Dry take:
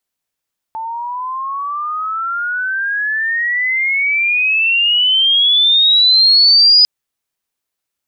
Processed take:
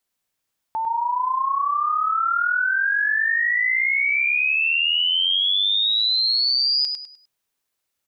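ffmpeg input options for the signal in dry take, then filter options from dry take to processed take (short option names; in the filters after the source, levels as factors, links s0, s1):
-f lavfi -i "aevalsrc='pow(10,(-5+16*(t/6.1-1))/20)*sin(2*PI*882*6.1/(30*log(2)/12)*(exp(30*log(2)/12*t/6.1)-1))':d=6.1:s=44100"
-af "acompressor=threshold=0.1:ratio=12,aecho=1:1:101|202|303|404:0.531|0.17|0.0544|0.0174"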